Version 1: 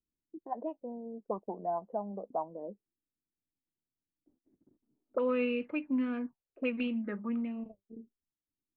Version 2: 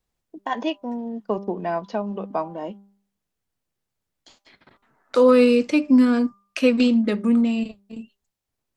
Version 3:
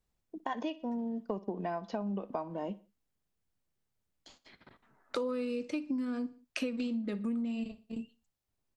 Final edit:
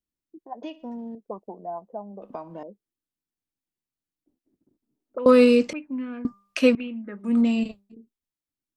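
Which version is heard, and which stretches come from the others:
1
0.63–1.15 from 3
2.22–2.63 from 3
5.26–5.73 from 2
6.25–6.75 from 2
7.3–7.83 from 2, crossfade 0.24 s

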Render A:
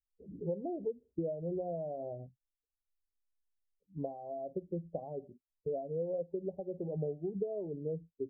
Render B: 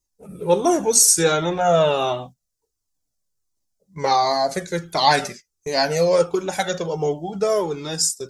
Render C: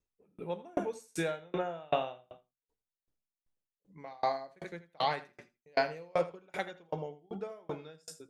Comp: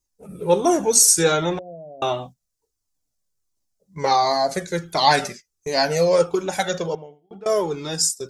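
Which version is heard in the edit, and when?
B
1.59–2.02 from A
6.95–7.46 from C

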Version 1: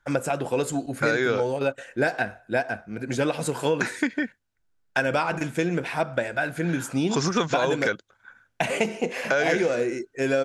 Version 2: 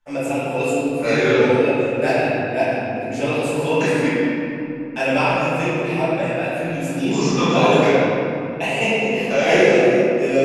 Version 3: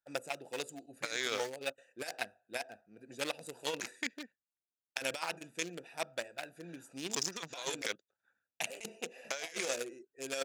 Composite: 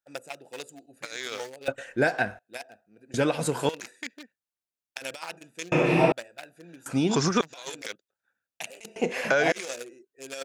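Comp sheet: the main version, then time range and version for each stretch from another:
3
1.68–2.39 from 1
3.14–3.69 from 1
5.72–6.12 from 2
6.86–7.41 from 1
8.96–9.52 from 1

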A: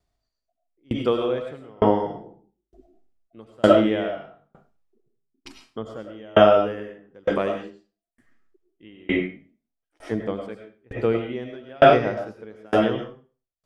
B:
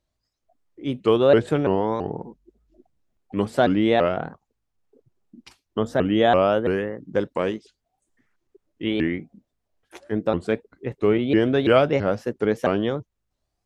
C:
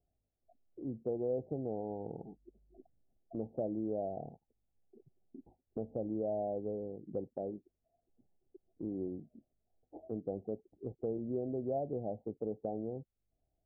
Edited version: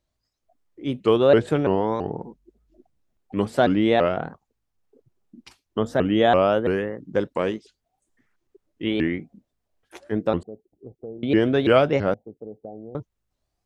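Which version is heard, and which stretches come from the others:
B
10.43–11.23 from C
12.14–12.95 from C
not used: A

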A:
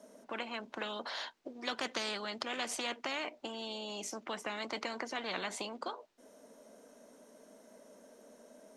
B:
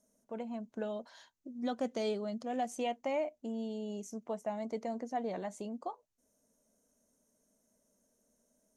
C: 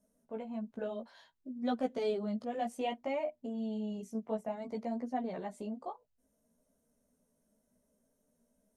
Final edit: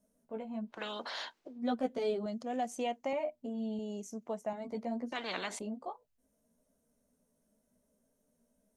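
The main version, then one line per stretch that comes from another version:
C
0.76–1.51 from A, crossfade 0.24 s
2.26–3.13 from B
3.79–4.53 from B
5.12–5.59 from A

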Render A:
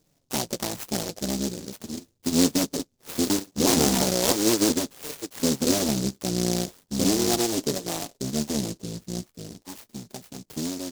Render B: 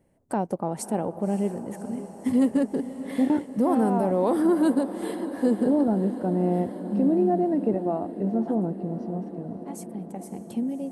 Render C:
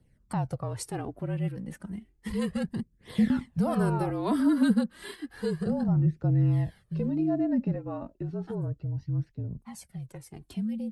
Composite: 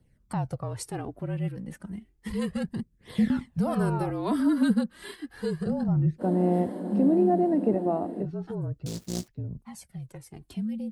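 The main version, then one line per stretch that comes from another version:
C
6.21–8.24 from B, crossfade 0.06 s
8.86–9.28 from A

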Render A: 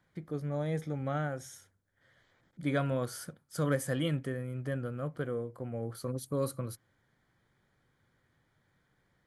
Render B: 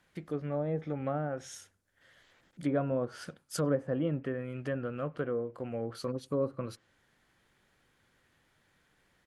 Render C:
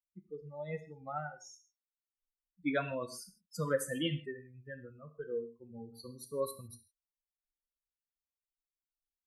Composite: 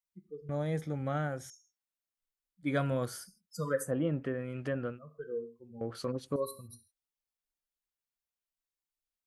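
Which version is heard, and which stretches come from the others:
C
0.49–1.5 from A
2.69–3.21 from A, crossfade 0.16 s
3.87–4.94 from B, crossfade 0.10 s
5.81–6.36 from B

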